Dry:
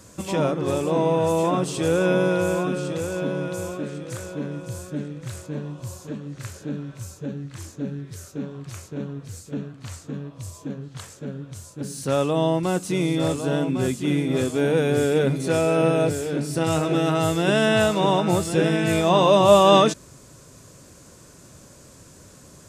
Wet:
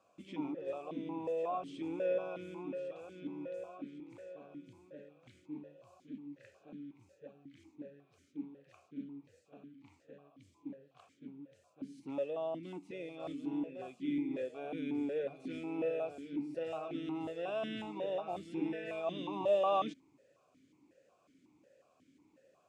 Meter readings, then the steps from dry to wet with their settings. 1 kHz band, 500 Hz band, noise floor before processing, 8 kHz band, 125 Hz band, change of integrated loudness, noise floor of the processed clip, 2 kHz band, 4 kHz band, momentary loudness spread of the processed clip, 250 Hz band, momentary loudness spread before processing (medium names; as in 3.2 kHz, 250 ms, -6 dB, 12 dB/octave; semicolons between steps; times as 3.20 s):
-17.5 dB, -17.0 dB, -48 dBFS, under -35 dB, -28.5 dB, -17.5 dB, -72 dBFS, -22.0 dB, -23.5 dB, 19 LU, -16.0 dB, 16 LU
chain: stepped vowel filter 5.5 Hz; trim -7 dB